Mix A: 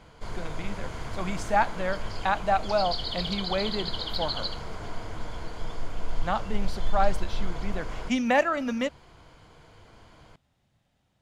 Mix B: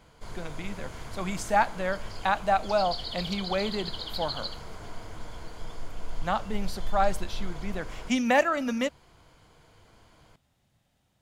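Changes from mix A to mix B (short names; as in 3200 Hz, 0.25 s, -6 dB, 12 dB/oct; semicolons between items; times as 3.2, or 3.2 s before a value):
background -5.0 dB; master: add high shelf 8600 Hz +11.5 dB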